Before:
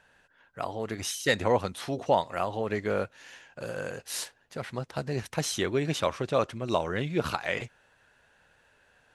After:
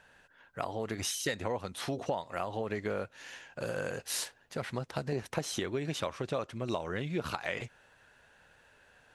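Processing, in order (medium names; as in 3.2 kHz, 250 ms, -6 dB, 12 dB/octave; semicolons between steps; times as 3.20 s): 5.12–5.60 s: peaking EQ 470 Hz +7 dB 2.7 oct; compression 6:1, threshold -32 dBFS, peak gain reduction 13.5 dB; trim +1.5 dB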